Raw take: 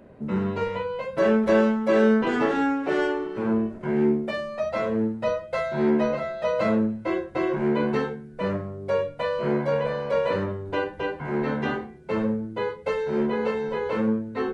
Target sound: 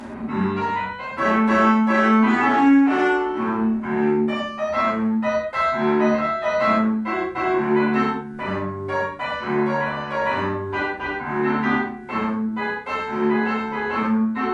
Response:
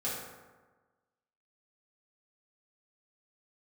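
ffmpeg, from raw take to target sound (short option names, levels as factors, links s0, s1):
-filter_complex "[0:a]equalizer=f=125:t=o:w=1:g=-8,equalizer=f=250:t=o:w=1:g=5,equalizer=f=500:t=o:w=1:g=-12,equalizer=f=1000:t=o:w=1:g=10,equalizer=f=2000:t=o:w=1:g=5,acompressor=mode=upward:threshold=0.0447:ratio=2.5[s0];[1:a]atrim=start_sample=2205,atrim=end_sample=3087,asetrate=22050,aresample=44100[s1];[s0][s1]afir=irnorm=-1:irlink=0,volume=0.596"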